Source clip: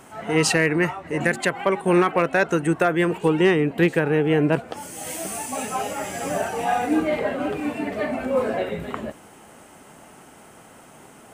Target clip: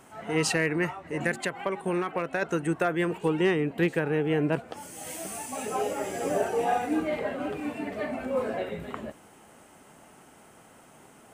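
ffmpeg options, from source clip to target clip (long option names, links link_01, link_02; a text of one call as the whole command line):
ffmpeg -i in.wav -filter_complex "[0:a]asplit=3[link_01][link_02][link_03];[link_01]afade=type=out:start_time=1.36:duration=0.02[link_04];[link_02]acompressor=threshold=-18dB:ratio=6,afade=type=in:start_time=1.36:duration=0.02,afade=type=out:start_time=2.41:duration=0.02[link_05];[link_03]afade=type=in:start_time=2.41:duration=0.02[link_06];[link_04][link_05][link_06]amix=inputs=3:normalize=0,asettb=1/sr,asplit=3[link_07][link_08][link_09];[link_07]atrim=end=5.664[link_10];[link_08]atrim=start=5.66:end=6.78,asetpts=PTS-STARTPTS,afade=type=in:duration=0.004:curve=qsin,afade=type=out:start_time=1.116:duration=0.004:curve=qsin,equalizer=frequency=410:width=1.6:gain=11.5[link_11];[link_09]atrim=start=6.776[link_12];[link_10][link_11]acrossfade=duration=0.004:curve1=hsin:curve2=qsin[link_13];[link_13][link_12]acrossfade=duration=0.004:curve1=qsin:curve2=hsin,volume=-6.5dB" out.wav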